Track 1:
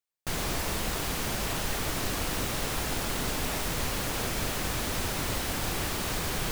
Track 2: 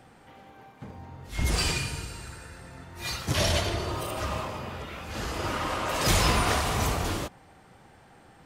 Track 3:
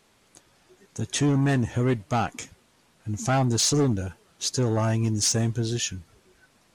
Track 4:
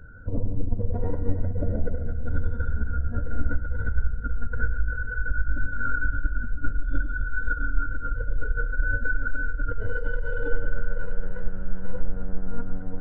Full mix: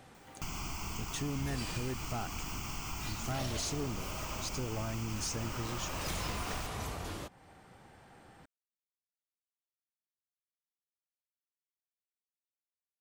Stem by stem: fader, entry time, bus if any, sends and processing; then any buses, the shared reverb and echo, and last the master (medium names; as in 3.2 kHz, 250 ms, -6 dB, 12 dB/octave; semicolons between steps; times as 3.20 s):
+2.5 dB, 0.15 s, no send, upward compressor, threshold -48 dBFS; static phaser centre 2.6 kHz, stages 8
-3.0 dB, 0.00 s, no send, none
-2.5 dB, 0.00 s, no send, none
mute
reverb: none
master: compression 2:1, threshold -44 dBFS, peak gain reduction 14 dB